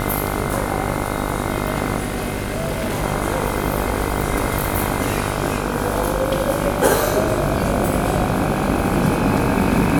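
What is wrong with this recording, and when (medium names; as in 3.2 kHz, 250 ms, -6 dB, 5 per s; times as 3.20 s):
buzz 50 Hz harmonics 30 -24 dBFS
1.98–3.04 s: clipped -18 dBFS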